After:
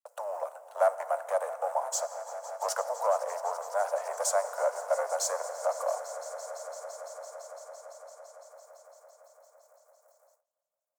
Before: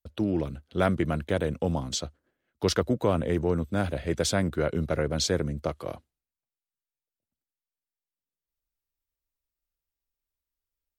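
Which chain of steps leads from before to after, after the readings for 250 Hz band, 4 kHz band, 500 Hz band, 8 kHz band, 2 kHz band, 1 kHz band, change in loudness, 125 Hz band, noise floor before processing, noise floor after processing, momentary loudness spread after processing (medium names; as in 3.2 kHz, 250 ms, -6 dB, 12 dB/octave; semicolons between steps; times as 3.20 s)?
under -40 dB, -10.5 dB, -0.5 dB, +2.0 dB, -5.5 dB, +5.0 dB, -4.0 dB, under -40 dB, under -85 dBFS, under -85 dBFS, 17 LU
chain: companding laws mixed up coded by mu; treble shelf 8.2 kHz -9.5 dB; in parallel at -2 dB: compression, threshold -33 dBFS, peak gain reduction 14 dB; on the sum: saturation -16.5 dBFS, distortion -16 dB; FFT filter 910 Hz 0 dB, 3.5 kHz -28 dB, 7.3 kHz +1 dB; on a send: echo with a slow build-up 169 ms, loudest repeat 5, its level -17.5 dB; on the sum: FDN reverb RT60 3.3 s, high-frequency decay 0.65×, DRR 13.5 dB; gate with hold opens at -53 dBFS; steep high-pass 570 Hz 72 dB/octave; trim +5 dB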